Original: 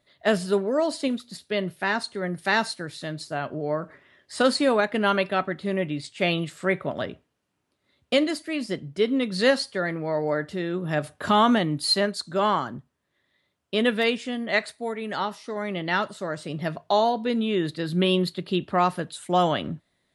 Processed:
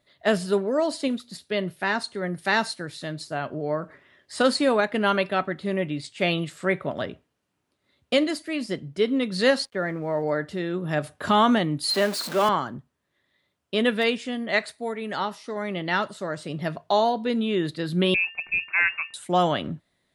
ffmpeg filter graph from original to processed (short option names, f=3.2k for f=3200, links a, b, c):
-filter_complex "[0:a]asettb=1/sr,asplit=3[a][b][c];[a]atrim=end=9.654[d];[b]atrim=start=9.65:end=10.23,asetpts=PTS-STARTPTS,afade=t=in:d=0.004:c=qsin,afade=t=out:st=0.576:d=0.004:c=qsin,lowpass=2.2k,aeval=exprs='sgn(val(0))*max(abs(val(0))-0.001,0)':c=same[e];[c]atrim=start=10.226[f];[d][e]acrossfade=d=0.004:c1=hsin:c2=qsin[g];[g][f]acrossfade=d=0.004:c1=qsin:c2=hsin,asettb=1/sr,asplit=3[h][i][j];[h]atrim=end=11.904[k];[i]atrim=start=11.9:end=12.49,asetpts=PTS-STARTPTS,afade=t=in:d=0.004:c=qsin,afade=t=out:st=0.586:d=0.004:c=qsin,aeval=exprs='val(0)+0.5*0.0473*sgn(val(0))':c=same,highpass=f=210:w=0.5412,highpass=f=210:w=1.3066,acrossover=split=2900[l][m];[m]acompressor=threshold=-26dB:ratio=4:attack=1:release=60[n];[l][n]amix=inputs=2:normalize=0[o];[j]atrim=start=12.486[p];[k][o]acrossfade=d=0.004:c1=hsin:c2=qsin[q];[q][p]acrossfade=d=0.004:c1=qsin:c2=hsin,asettb=1/sr,asplit=3[r][s][t];[r]atrim=end=18.144[u];[s]atrim=start=18.14:end=19.14,asetpts=PTS-STARTPTS,afade=t=in:d=0.004:c=qsin,afade=t=out:st=0.996:d=0.004:c=qsin,aeval=exprs='if(lt(val(0),0),0.708*val(0),val(0))':c=same,aeval=exprs='val(0)+0.00282*sin(2*PI*1000*n/s)':c=same,lowpass=f=2.4k:t=q:w=0.5098,lowpass=f=2.4k:t=q:w=0.6013,lowpass=f=2.4k:t=q:w=0.9,lowpass=f=2.4k:t=q:w=2.563,afreqshift=-2800[v];[t]atrim=start=19.136[w];[u][v]acrossfade=d=0.004:c1=hsin:c2=qsin[x];[x][w]acrossfade=d=0.004:c1=qsin:c2=hsin"